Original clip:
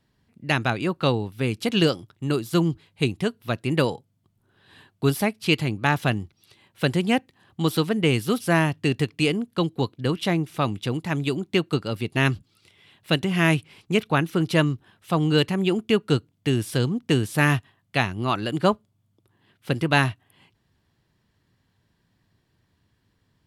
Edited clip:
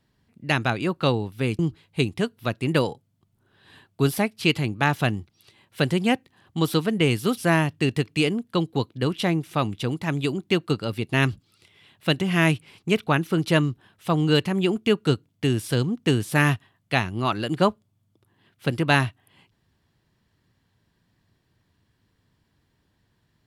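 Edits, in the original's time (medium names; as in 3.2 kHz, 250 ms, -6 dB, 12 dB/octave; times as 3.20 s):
1.59–2.62 s: delete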